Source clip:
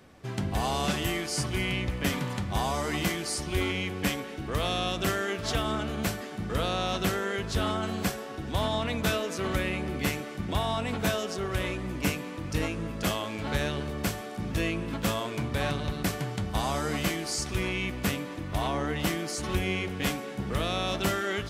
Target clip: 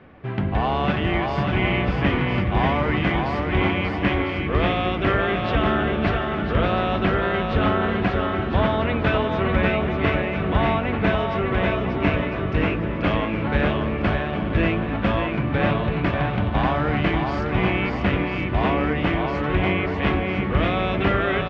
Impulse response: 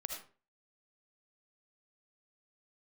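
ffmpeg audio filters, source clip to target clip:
-filter_complex "[0:a]lowpass=f=2.7k:w=0.5412,lowpass=f=2.7k:w=1.3066,asplit=2[a][b];[b]aecho=0:1:590|1003|1292|1494|1636:0.631|0.398|0.251|0.158|0.1[c];[a][c]amix=inputs=2:normalize=0,volume=7dB"

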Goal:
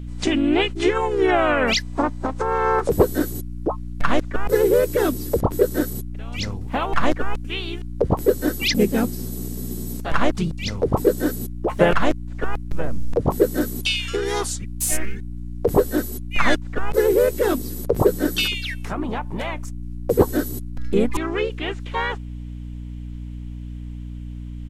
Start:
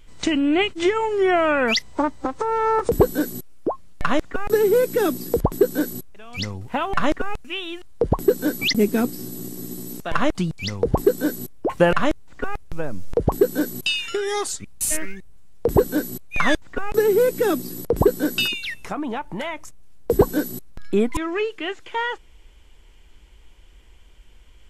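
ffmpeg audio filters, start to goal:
-filter_complex "[0:a]asplit=3[a][b][c];[b]asetrate=37084,aresample=44100,atempo=1.18921,volume=-9dB[d];[c]asetrate=52444,aresample=44100,atempo=0.840896,volume=-7dB[e];[a][d][e]amix=inputs=3:normalize=0,aeval=exprs='val(0)+0.0316*(sin(2*PI*60*n/s)+sin(2*PI*2*60*n/s)/2+sin(2*PI*3*60*n/s)/3+sin(2*PI*4*60*n/s)/4+sin(2*PI*5*60*n/s)/5)':c=same,volume=-1dB"

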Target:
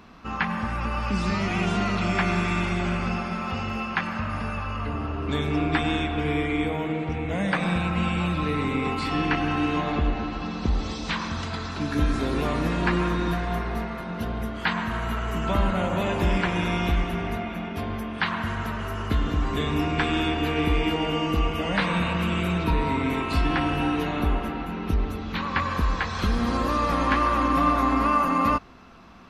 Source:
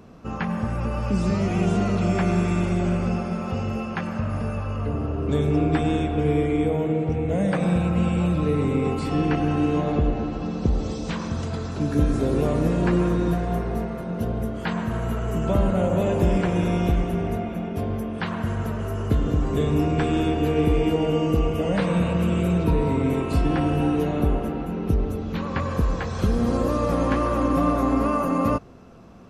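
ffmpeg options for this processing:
-af "equalizer=f=125:t=o:w=1:g=-8,equalizer=f=500:t=o:w=1:g=-8,equalizer=f=1k:t=o:w=1:g=5,equalizer=f=2k:t=o:w=1:g=6,equalizer=f=4k:t=o:w=1:g=7,equalizer=f=8k:t=o:w=1:g=-4"

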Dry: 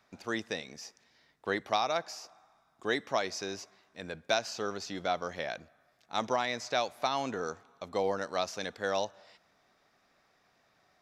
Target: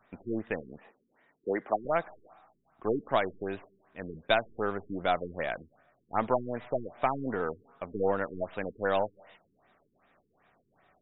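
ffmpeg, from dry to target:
-filter_complex "[0:a]aeval=exprs='if(lt(val(0),0),0.708*val(0),val(0))':c=same,asettb=1/sr,asplit=3[a][b][c];[a]atrim=end=0.784[d];[b]atrim=start=0.78:end=1.85,asetpts=PTS-STARTPTS,afade=t=in:d=0.004:c=qsin,afade=t=out:st=1.066:d=0.004:c=qsin,acrossover=split=180 2500:gain=0.126 1 0.0708[e][f][g];[e][f][g]amix=inputs=3:normalize=0[h];[c]atrim=start=1.846[i];[d][h]acrossfade=d=0.004:c1=hsin:c2=qsin[j];[j][i]acrossfade=d=0.004:c1=qsin:c2=hsin,afftfilt=real='re*lt(b*sr/1024,420*pow(3900/420,0.5+0.5*sin(2*PI*2.6*pts/sr)))':imag='im*lt(b*sr/1024,420*pow(3900/420,0.5+0.5*sin(2*PI*2.6*pts/sr)))':win_size=1024:overlap=0.75,volume=5dB"

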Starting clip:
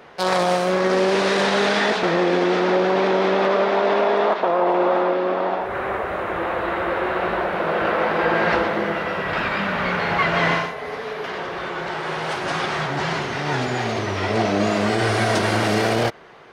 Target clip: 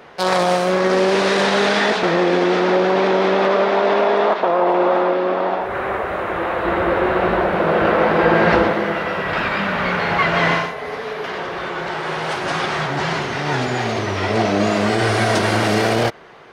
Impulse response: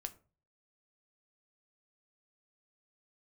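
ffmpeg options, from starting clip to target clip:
-filter_complex "[0:a]asettb=1/sr,asplit=3[a][b][c];[a]atrim=end=6.654[d];[b]atrim=start=6.65:end=8.73,asetpts=PTS-STARTPTS,afade=t=in:d=0.004:c=qsin,afade=t=out:st=2.076:d=0.004:c=qsin,lowshelf=f=470:g=7[e];[c]atrim=start=8.726[f];[d][e]acrossfade=d=0.004:c1=hsin:c2=qsin[g];[g][f]acrossfade=d=0.004:c1=qsin:c2=hsin,volume=2.5dB"

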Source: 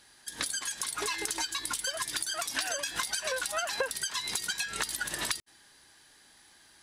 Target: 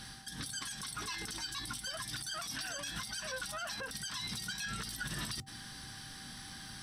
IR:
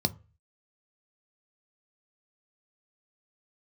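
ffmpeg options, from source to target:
-filter_complex "[0:a]areverse,acompressor=threshold=-43dB:ratio=6,areverse,aeval=exprs='val(0)+0.000447*sin(2*PI*780*n/s)':c=same,alimiter=level_in=17dB:limit=-24dB:level=0:latency=1:release=40,volume=-17dB,lowshelf=f=260:g=10.5,bandreject=f=4.9k:w=18,asplit=2[a][b];[1:a]atrim=start_sample=2205,asetrate=57330,aresample=44100,highshelf=f=4.3k:g=6[c];[b][c]afir=irnorm=-1:irlink=0,volume=-13.5dB[d];[a][d]amix=inputs=2:normalize=0,volume=10dB"

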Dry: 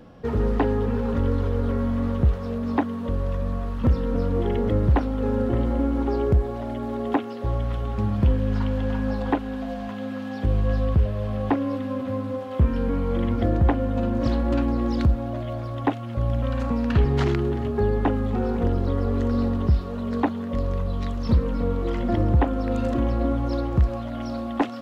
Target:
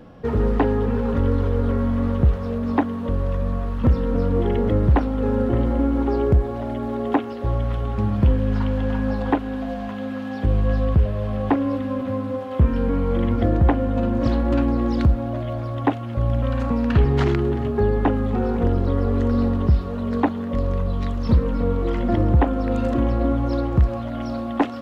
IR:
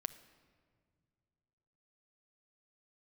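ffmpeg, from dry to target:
-filter_complex "[0:a]asplit=2[a][b];[1:a]atrim=start_sample=2205,lowpass=4k[c];[b][c]afir=irnorm=-1:irlink=0,volume=-6.5dB[d];[a][d]amix=inputs=2:normalize=0"

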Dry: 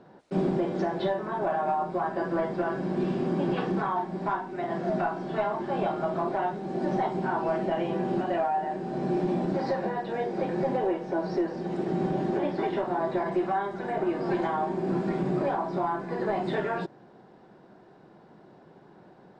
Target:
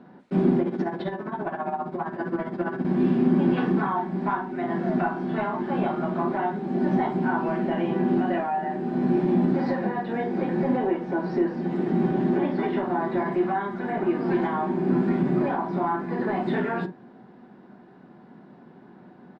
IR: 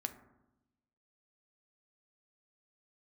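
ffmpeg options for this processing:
-filter_complex "[0:a]firequalizer=gain_entry='entry(110,0);entry(190,10);entry(280,8);entry(400,2);entry(1900,5);entry(5700,-5)':delay=0.05:min_phase=1,asettb=1/sr,asplit=3[a][b][c];[a]atrim=end=0.614[d];[b]atrim=start=0.61:end=2.85,asetpts=PTS-STARTPTS,afade=t=in:d=0.004:c=qsin,afade=t=out:st=2.236:d=0.004:c=qsin,tremolo=f=15:d=0.76[e];[c]atrim=start=2.846[f];[d][e]acrossfade=d=0.004:c1=hsin:c2=qsin[g];[g][f]acrossfade=d=0.004:c1=qsin:c2=hsin,equalizer=f=550:t=o:w=0.4:g=-3[h];[1:a]atrim=start_sample=2205,atrim=end_sample=3087[i];[h][i]afir=irnorm=-1:irlink=0"

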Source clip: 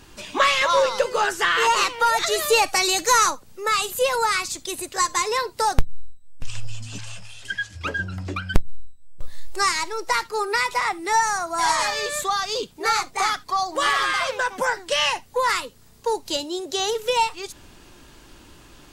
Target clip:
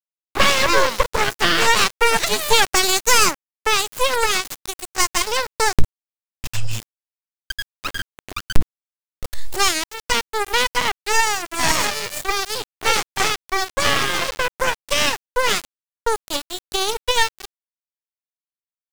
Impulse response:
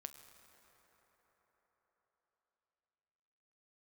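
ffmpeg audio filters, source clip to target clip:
-af "bandreject=f=60:t=h:w=6,bandreject=f=120:t=h:w=6,bandreject=f=180:t=h:w=6,bandreject=f=240:t=h:w=6,bandreject=f=300:t=h:w=6,aeval=exprs='0.708*(cos(1*acos(clip(val(0)/0.708,-1,1)))-cos(1*PI/2))+0.00891*(cos(3*acos(clip(val(0)/0.708,-1,1)))-cos(3*PI/2))+0.00447*(cos(4*acos(clip(val(0)/0.708,-1,1)))-cos(4*PI/2))+0.282*(cos(6*acos(clip(val(0)/0.708,-1,1)))-cos(6*PI/2))+0.00794*(cos(7*acos(clip(val(0)/0.708,-1,1)))-cos(7*PI/2))':c=same,aeval=exprs='val(0)*gte(abs(val(0)),0.0841)':c=same,volume=-1dB"

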